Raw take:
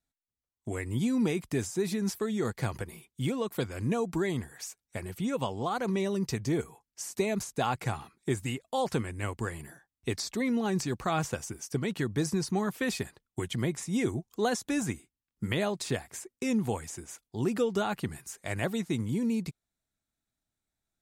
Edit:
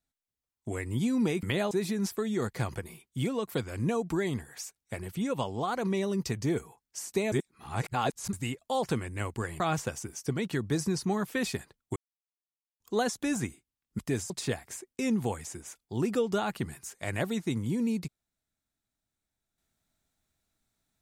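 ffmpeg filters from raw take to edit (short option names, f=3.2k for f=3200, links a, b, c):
-filter_complex "[0:a]asplit=10[a][b][c][d][e][f][g][h][i][j];[a]atrim=end=1.432[k];[b]atrim=start=15.448:end=15.732[l];[c]atrim=start=1.738:end=7.352[m];[d]atrim=start=7.348:end=8.362,asetpts=PTS-STARTPTS,areverse[n];[e]atrim=start=8.358:end=9.632[o];[f]atrim=start=11.058:end=13.42,asetpts=PTS-STARTPTS,afade=t=out:st=2.358:d=0.004:c=hsin[p];[g]atrim=start=13.42:end=14.26,asetpts=PTS-STARTPTS,volume=0[q];[h]atrim=start=14.26:end=15.452,asetpts=PTS-STARTPTS,afade=t=in:d=0.004:c=hsin[r];[i]atrim=start=1.428:end=1.742[s];[j]atrim=start=15.728[t];[k][l]acrossfade=d=0.004:c1=hsin:c2=hsin[u];[u][m]acrossfade=d=0.004:c1=hsin:c2=hsin[v];[v][n]acrossfade=d=0.004:c1=hsin:c2=hsin[w];[w][o]acrossfade=d=0.004:c1=hsin:c2=hsin[x];[p][q][r]concat=n=3:v=0:a=1[y];[x][y]acrossfade=d=0.004:c1=hsin:c2=hsin[z];[z][s]acrossfade=d=0.004:c1=hsin:c2=hsin[aa];[aa][t]acrossfade=d=0.004:c1=hsin:c2=hsin"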